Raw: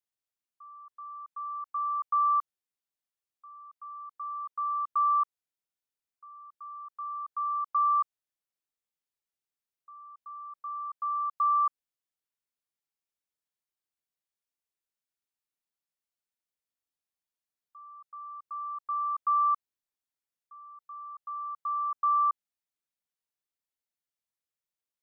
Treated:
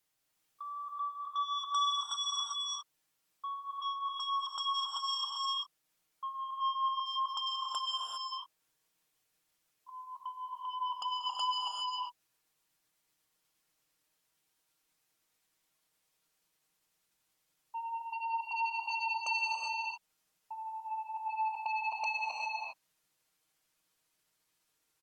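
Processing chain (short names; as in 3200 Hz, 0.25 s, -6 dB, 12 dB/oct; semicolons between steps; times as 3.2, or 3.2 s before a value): gliding pitch shift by -6 st starting unshifted; comb 6.4 ms, depth 55%; compressor 5:1, threshold -36 dBFS, peak gain reduction 14 dB; sine folder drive 15 dB, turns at -26.5 dBFS; non-linear reverb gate 0.43 s rising, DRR -1 dB; gain -8 dB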